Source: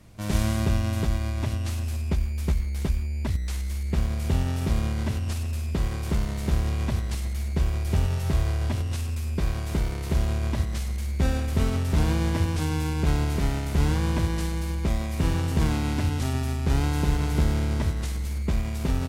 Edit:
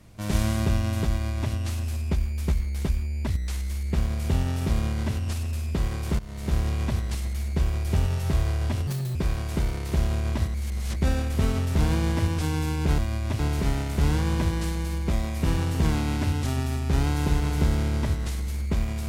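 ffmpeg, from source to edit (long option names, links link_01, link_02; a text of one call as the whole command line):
ffmpeg -i in.wav -filter_complex "[0:a]asplit=8[link_01][link_02][link_03][link_04][link_05][link_06][link_07][link_08];[link_01]atrim=end=6.19,asetpts=PTS-STARTPTS,afade=type=out:start_time=6.186:duration=0.004:curve=hsin:silence=0.125893[link_09];[link_02]atrim=start=6.19:end=8.874,asetpts=PTS-STARTPTS,afade=type=in:duration=0.38:silence=0.125893[link_10];[link_03]atrim=start=8.87:end=9.33,asetpts=PTS-STARTPTS,asetrate=71883,aresample=44100,atrim=end_sample=12445,asetpts=PTS-STARTPTS[link_11];[link_04]atrim=start=9.326:end=10.722[link_12];[link_05]atrim=start=10.718:end=11.142,asetpts=PTS-STARTPTS,areverse[link_13];[link_06]atrim=start=11.138:end=13.162[link_14];[link_07]atrim=start=1.108:end=1.522[link_15];[link_08]atrim=start=13.158[link_16];[link_09][link_10]concat=n=2:v=0:a=1[link_17];[link_17][link_11]acrossfade=duration=0.004:curve1=hsin:curve2=hsin[link_18];[link_18][link_12]acrossfade=duration=0.004:curve1=hsin:curve2=hsin[link_19];[link_19][link_13]acrossfade=duration=0.004:curve1=hsin:curve2=hsin[link_20];[link_20][link_14]acrossfade=duration=0.004:curve1=hsin:curve2=hsin[link_21];[link_21][link_15]acrossfade=duration=0.004:curve1=hsin:curve2=hsin[link_22];[link_22][link_16]acrossfade=duration=0.004:curve1=hsin:curve2=hsin" out.wav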